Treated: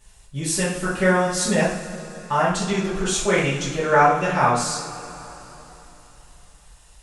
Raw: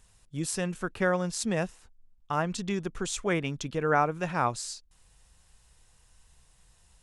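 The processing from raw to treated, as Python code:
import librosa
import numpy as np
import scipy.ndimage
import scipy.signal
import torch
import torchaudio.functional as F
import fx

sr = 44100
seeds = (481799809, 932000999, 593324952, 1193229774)

y = fx.rev_double_slope(x, sr, seeds[0], early_s=0.52, late_s=3.7, knee_db=-18, drr_db=-10.0)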